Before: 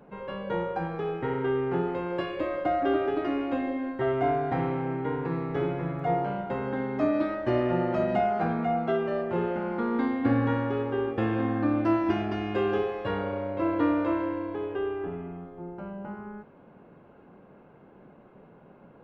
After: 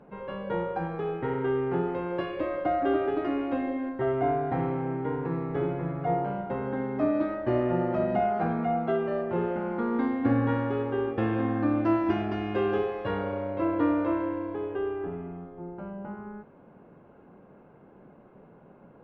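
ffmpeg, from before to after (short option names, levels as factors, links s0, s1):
-af "asetnsamples=n=441:p=0,asendcmd='3.89 lowpass f 1600;8.22 lowpass f 2200;10.49 lowpass f 3500;13.65 lowpass f 2100',lowpass=f=2700:p=1"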